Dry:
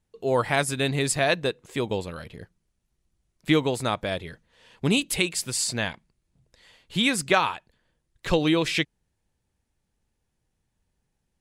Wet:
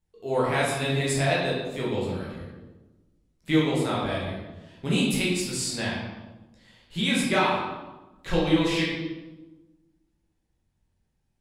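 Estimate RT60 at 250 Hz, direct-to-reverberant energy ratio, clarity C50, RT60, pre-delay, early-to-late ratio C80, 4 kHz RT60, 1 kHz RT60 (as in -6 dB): 1.5 s, -6.5 dB, 0.5 dB, 1.1 s, 12 ms, 3.5 dB, 0.80 s, 1.1 s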